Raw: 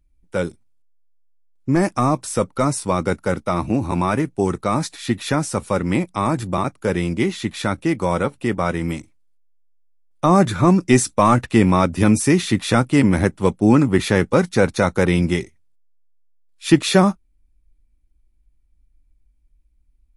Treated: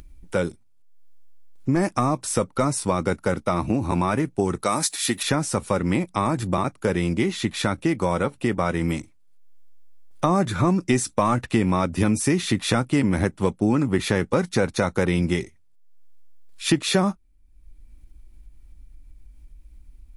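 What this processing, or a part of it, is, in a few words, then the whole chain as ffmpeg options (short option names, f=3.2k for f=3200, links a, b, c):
upward and downward compression: -filter_complex "[0:a]asettb=1/sr,asplit=3[a][b][c];[a]atrim=end=4.634[d];[b]atrim=start=4.63:end=5.23,asetpts=PTS-STARTPTS,afade=t=in:d=0.004:c=qsin,afade=t=out:st=0.596:d=0.004:c=qsin,aemphasis=mode=production:type=bsi[e];[c]atrim=start=5.226[f];[d][e]acrossfade=d=0.004:c1=hsin:c2=qsin[g];[g][f]acrossfade=d=0.004:c1=qsin:c2=hsin,acompressor=mode=upward:threshold=-34dB:ratio=2.5,acompressor=threshold=-21dB:ratio=3,volume=2dB"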